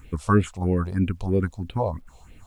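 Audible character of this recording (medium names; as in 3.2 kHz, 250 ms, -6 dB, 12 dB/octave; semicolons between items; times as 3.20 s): phasing stages 4, 3.1 Hz, lowest notch 260–1100 Hz; a quantiser's noise floor 12-bit, dither none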